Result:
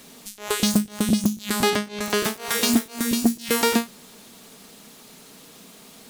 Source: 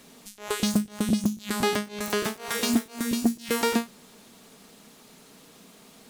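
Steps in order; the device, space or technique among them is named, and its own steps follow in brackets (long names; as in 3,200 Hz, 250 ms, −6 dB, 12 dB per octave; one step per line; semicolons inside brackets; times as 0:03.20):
0:01.70–0:02.14: high-shelf EQ 10,000 Hz −11.5 dB
presence and air boost (parametric band 3,900 Hz +2 dB 1.7 octaves; high-shelf EQ 9,900 Hz +6.5 dB)
level +3.5 dB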